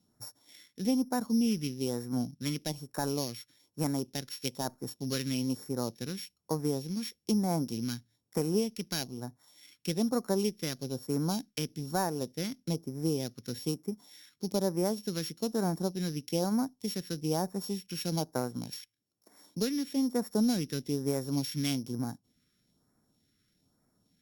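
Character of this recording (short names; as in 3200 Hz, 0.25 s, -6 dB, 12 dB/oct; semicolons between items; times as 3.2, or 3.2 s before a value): a buzz of ramps at a fixed pitch in blocks of 8 samples; phasing stages 2, 1.1 Hz, lowest notch 760–2900 Hz; Opus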